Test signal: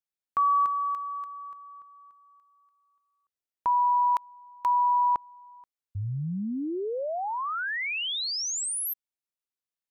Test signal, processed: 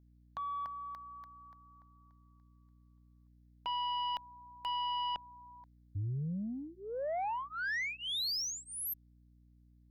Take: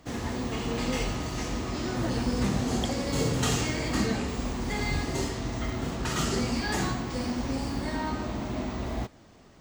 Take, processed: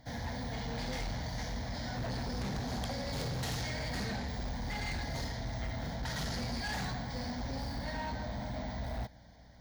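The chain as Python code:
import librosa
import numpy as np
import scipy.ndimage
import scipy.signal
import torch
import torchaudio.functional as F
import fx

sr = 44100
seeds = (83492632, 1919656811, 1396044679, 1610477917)

y = fx.fixed_phaser(x, sr, hz=1800.0, stages=8)
y = fx.cheby_harmonics(y, sr, harmonics=(3, 5, 6), levels_db=(-6, -9, -40), full_scale_db=-17.5)
y = fx.add_hum(y, sr, base_hz=60, snr_db=23)
y = F.gain(torch.from_numpy(y), -3.5).numpy()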